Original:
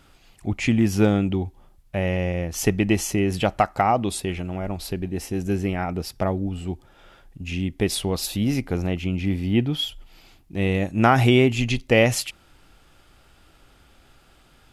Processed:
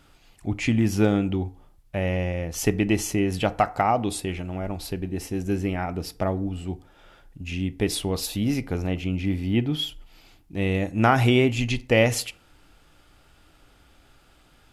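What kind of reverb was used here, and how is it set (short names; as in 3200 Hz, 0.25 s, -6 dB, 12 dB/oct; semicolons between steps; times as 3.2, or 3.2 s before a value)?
FDN reverb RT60 0.49 s, low-frequency decay 0.85×, high-frequency decay 0.5×, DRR 13 dB; gain -2 dB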